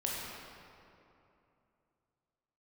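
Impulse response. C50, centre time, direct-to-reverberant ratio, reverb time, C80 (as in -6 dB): -2.0 dB, 149 ms, -4.5 dB, 2.8 s, -0.5 dB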